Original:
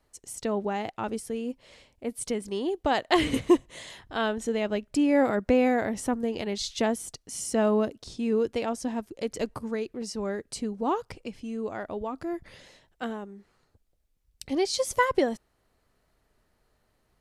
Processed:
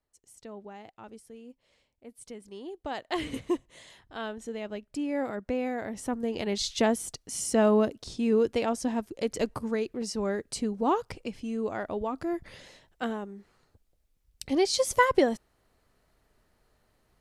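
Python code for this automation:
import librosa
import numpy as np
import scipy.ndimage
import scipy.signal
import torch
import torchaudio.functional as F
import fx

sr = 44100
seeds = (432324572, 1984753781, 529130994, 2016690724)

y = fx.gain(x, sr, db=fx.line((2.07, -15.0), (3.2, -8.5), (5.73, -8.5), (6.53, 1.5)))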